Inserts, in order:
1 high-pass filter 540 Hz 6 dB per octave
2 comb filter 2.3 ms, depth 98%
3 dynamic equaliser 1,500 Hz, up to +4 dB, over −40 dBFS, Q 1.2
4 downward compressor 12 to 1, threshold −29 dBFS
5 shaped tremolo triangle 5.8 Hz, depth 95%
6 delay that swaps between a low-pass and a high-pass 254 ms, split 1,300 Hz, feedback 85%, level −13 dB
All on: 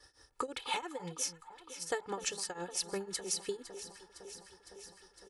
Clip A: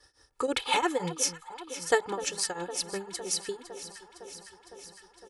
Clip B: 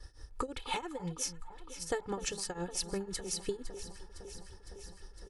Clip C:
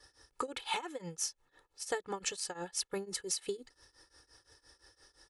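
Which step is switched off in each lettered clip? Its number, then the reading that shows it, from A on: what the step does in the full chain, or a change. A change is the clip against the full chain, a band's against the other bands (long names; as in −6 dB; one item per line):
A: 4, average gain reduction 6.0 dB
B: 1, 125 Hz band +8.0 dB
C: 6, echo-to-direct ratio −10.5 dB to none audible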